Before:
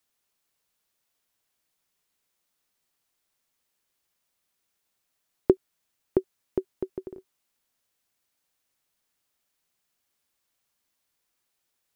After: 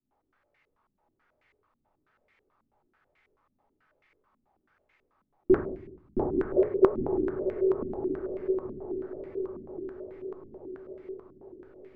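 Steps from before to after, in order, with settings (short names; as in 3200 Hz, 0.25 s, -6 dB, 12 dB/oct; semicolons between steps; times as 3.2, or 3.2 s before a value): 6.17–6.87 sine-wave speech; in parallel at -2 dB: level quantiser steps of 16 dB; on the sum: limiter -12.5 dBFS, peak gain reduction 11.5 dB; compressor 6:1, threshold -28 dBFS, peak gain reduction 9 dB; diffused feedback echo 0.946 s, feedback 60%, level -4 dB; shoebox room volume 110 m³, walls mixed, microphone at 2.8 m; stepped low-pass 9.2 Hz 230–2100 Hz; gain -5.5 dB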